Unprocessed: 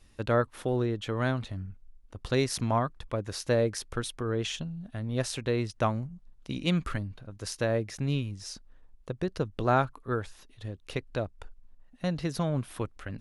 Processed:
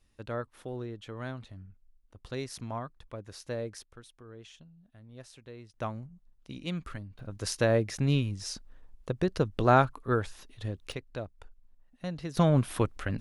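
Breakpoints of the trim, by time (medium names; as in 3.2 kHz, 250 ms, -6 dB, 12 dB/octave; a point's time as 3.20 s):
-10 dB
from 3.83 s -18.5 dB
from 5.74 s -8 dB
from 7.19 s +3 dB
from 10.92 s -6 dB
from 12.37 s +6 dB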